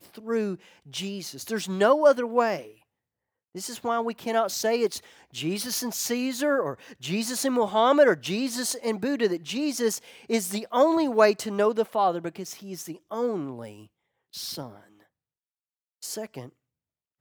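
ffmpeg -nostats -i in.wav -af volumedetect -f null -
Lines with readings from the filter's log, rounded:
mean_volume: -27.0 dB
max_volume: -5.6 dB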